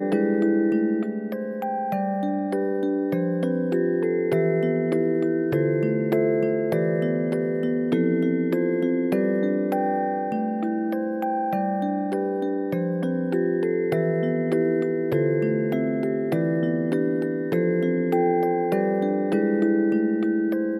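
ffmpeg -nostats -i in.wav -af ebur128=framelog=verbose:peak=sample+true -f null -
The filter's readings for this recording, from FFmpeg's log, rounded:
Integrated loudness:
  I:         -23.6 LUFS
  Threshold: -33.6 LUFS
Loudness range:
  LRA:         2.5 LU
  Threshold: -43.7 LUFS
  LRA low:   -25.3 LUFS
  LRA high:  -22.7 LUFS
Sample peak:
  Peak:       -9.5 dBFS
True peak:
  Peak:       -9.5 dBFS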